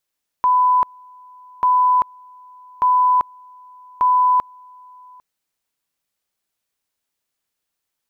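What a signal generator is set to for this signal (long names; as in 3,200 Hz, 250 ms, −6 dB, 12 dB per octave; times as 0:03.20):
tone at two levels in turn 1,000 Hz −11.5 dBFS, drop 29 dB, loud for 0.39 s, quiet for 0.80 s, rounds 4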